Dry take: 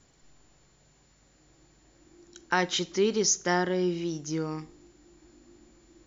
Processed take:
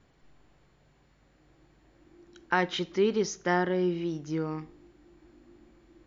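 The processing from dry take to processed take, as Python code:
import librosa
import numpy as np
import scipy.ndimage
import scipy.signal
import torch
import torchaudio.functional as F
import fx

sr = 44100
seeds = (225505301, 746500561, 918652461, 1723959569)

y = scipy.signal.sosfilt(scipy.signal.butter(2, 3000.0, 'lowpass', fs=sr, output='sos'), x)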